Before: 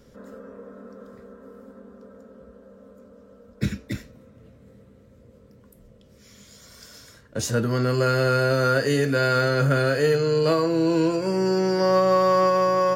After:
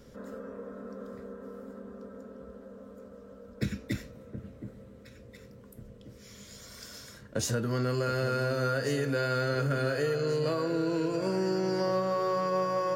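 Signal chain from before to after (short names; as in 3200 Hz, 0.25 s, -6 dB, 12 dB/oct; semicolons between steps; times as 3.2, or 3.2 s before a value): compressor 6:1, threshold -27 dBFS, peak gain reduction 11.5 dB; on a send: echo with dull and thin repeats by turns 0.719 s, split 1200 Hz, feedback 64%, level -10 dB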